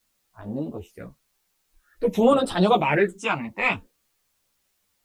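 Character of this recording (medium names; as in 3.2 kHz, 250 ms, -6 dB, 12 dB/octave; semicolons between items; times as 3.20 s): phasing stages 8, 0.5 Hz, lowest notch 450–2100 Hz; a quantiser's noise floor 12-bit, dither triangular; a shimmering, thickened sound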